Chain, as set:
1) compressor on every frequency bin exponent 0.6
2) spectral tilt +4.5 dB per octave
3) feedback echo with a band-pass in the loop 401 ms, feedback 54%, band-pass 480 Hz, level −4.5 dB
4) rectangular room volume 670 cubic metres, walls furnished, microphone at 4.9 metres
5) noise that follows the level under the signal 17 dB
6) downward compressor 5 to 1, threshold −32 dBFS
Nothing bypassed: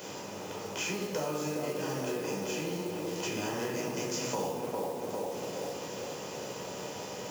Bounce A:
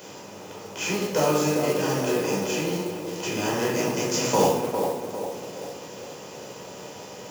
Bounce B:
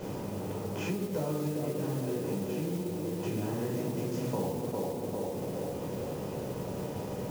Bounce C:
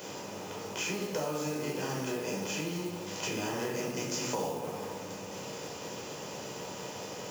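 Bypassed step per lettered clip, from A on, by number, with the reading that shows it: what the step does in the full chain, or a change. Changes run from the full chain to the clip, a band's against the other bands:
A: 6, change in crest factor +3.0 dB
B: 2, 125 Hz band +13.0 dB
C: 3, change in momentary loudness spread +1 LU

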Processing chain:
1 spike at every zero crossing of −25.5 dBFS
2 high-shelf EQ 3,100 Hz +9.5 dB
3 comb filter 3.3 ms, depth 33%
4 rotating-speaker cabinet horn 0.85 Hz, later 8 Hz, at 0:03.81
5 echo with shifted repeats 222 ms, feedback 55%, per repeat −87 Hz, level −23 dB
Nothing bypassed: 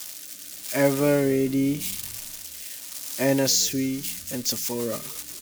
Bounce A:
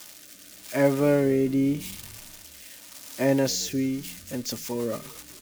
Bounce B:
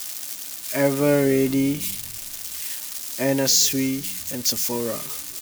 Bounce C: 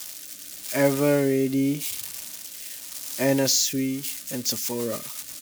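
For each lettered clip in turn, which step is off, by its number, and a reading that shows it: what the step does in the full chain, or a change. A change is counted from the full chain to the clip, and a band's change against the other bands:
2, 8 kHz band −7.5 dB
4, 8 kHz band +2.0 dB
5, echo-to-direct ratio −21.5 dB to none audible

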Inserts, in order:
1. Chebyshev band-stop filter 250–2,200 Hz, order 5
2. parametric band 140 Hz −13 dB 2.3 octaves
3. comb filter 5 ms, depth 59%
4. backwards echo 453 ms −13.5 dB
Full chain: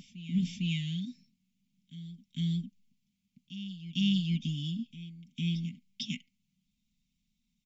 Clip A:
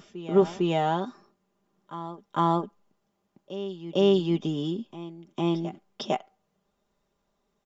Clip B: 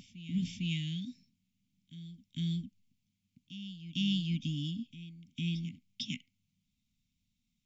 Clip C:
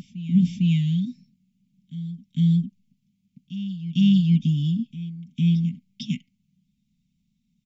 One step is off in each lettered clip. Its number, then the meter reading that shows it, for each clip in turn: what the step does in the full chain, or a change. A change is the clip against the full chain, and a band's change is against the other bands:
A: 1, 250 Hz band +4.0 dB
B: 3, 250 Hz band −1.5 dB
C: 2, 125 Hz band +12.0 dB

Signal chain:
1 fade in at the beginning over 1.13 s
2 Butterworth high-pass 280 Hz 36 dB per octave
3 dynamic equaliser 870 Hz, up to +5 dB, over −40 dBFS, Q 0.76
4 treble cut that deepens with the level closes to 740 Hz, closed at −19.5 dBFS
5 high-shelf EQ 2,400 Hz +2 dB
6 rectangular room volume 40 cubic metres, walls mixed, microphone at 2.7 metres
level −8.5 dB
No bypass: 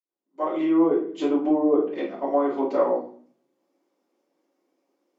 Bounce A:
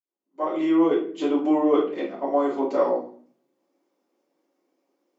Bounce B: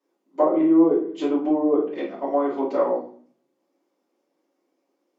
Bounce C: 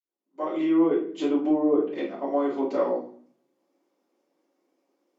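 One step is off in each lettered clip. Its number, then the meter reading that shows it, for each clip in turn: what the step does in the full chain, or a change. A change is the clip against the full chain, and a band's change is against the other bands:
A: 4, 2 kHz band +2.0 dB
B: 1, 2 kHz band −2.5 dB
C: 3, 1 kHz band −3.0 dB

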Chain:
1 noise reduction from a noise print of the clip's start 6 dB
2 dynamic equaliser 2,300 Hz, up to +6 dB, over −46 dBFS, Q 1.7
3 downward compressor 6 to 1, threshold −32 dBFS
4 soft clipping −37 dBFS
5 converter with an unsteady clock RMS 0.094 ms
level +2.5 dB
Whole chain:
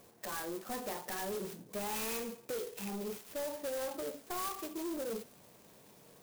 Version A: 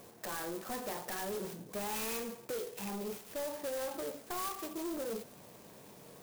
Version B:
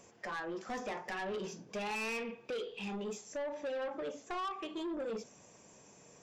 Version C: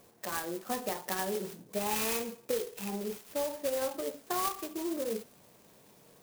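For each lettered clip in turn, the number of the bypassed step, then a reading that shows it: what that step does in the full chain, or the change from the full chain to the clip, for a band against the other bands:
1, change in momentary loudness spread −3 LU
5, 8 kHz band −8.0 dB
4, distortion level −9 dB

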